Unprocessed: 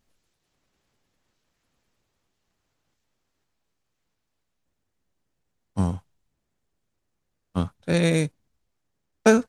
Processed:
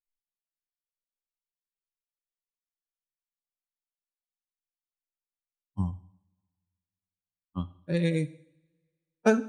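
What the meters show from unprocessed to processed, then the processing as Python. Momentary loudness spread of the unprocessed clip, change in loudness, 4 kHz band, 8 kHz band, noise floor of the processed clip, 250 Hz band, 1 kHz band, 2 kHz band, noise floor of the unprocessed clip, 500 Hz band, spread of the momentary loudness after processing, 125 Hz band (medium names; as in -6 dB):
12 LU, -6.0 dB, -10.0 dB, under -10 dB, under -85 dBFS, -5.5 dB, -6.5 dB, -7.0 dB, -78 dBFS, -6.0 dB, 15 LU, -5.5 dB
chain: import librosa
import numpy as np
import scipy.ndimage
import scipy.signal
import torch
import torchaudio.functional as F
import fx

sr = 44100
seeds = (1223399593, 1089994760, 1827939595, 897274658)

y = fx.bin_expand(x, sr, power=2.0)
y = fx.high_shelf(y, sr, hz=5000.0, db=-10.5)
y = fx.rev_double_slope(y, sr, seeds[0], early_s=0.63, late_s=1.9, knee_db=-23, drr_db=13.0)
y = y * 10.0 ** (-3.5 / 20.0)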